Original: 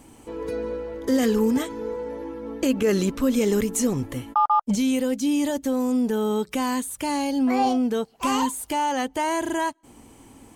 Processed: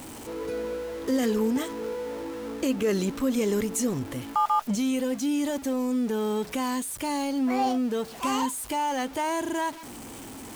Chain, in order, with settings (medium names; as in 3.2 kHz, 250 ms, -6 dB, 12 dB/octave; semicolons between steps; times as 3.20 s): jump at every zero crossing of -32 dBFS; bass shelf 65 Hz -8 dB; trim -4.5 dB